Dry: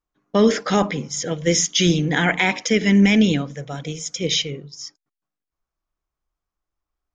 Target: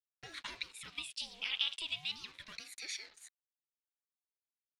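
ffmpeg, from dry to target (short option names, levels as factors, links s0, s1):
-af "acompressor=threshold=0.0501:ratio=5,acrusher=bits=6:mix=0:aa=0.5,bandpass=f=2100:t=q:w=3.9:csg=0,asetrate=65709,aresample=44100,aeval=exprs='val(0)*sin(2*PI*660*n/s+660*0.65/0.33*sin(2*PI*0.33*n/s))':c=same,volume=1.26"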